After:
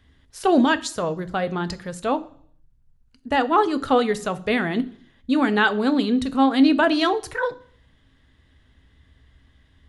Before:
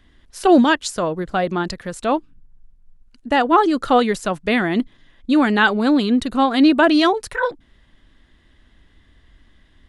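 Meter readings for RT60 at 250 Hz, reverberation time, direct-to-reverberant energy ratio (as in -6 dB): 0.55 s, 0.55 s, 11.0 dB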